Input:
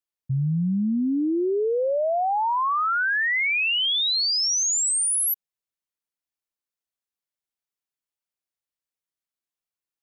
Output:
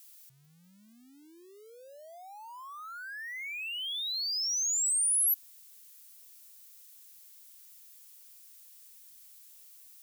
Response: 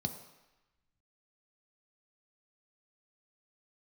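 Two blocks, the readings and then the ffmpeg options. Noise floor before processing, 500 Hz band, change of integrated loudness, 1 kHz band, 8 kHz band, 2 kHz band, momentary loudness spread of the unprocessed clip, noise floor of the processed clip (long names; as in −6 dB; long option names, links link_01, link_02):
below −85 dBFS, below −25 dB, −7.0 dB, −23.0 dB, −5.5 dB, −17.0 dB, 4 LU, −59 dBFS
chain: -af "aeval=exprs='val(0)+0.5*0.0075*sgn(val(0))':channel_layout=same,aderivative,volume=-6.5dB"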